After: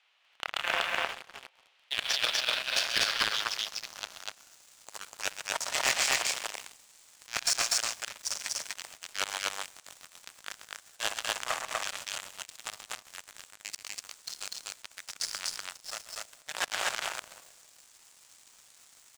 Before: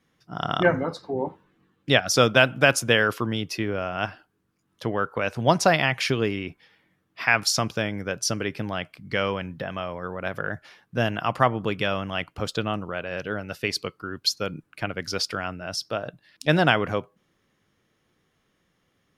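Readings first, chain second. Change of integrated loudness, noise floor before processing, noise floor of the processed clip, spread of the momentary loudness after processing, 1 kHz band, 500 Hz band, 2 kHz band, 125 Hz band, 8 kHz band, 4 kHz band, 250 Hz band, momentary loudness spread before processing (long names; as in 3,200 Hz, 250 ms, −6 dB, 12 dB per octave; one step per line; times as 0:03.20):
−7.0 dB, −71 dBFS, −63 dBFS, 18 LU, −10.5 dB, −19.0 dB, −8.0 dB, −30.5 dB, +0.5 dB, −2.5 dB, −27.0 dB, 13 LU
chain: hold until the input has moved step −29.5 dBFS
rectangular room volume 760 cubic metres, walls mixed, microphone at 1.3 metres
power curve on the samples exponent 3
compressor whose output falls as the input rises −40 dBFS, ratio −0.5
spectral tilt +2.5 dB per octave
background noise white −64 dBFS
low-pass filter sweep 2,900 Hz → 7,700 Hz, 0:01.54–0:04.66
de-essing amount 55%
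high-pass filter 590 Hz 24 dB per octave
volume swells 115 ms
loudspeakers that aren't time-aligned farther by 45 metres −11 dB, 84 metres −1 dB
leveller curve on the samples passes 3
level +3.5 dB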